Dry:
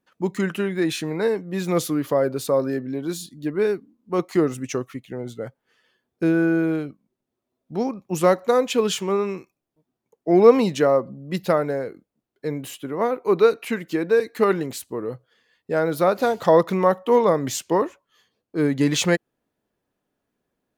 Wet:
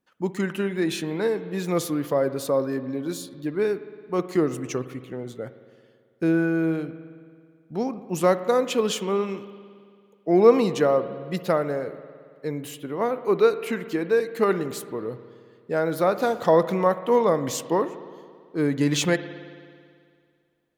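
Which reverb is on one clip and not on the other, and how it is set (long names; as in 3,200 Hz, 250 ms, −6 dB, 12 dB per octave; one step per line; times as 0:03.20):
spring reverb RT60 2.1 s, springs 55 ms, chirp 75 ms, DRR 12.5 dB
level −2.5 dB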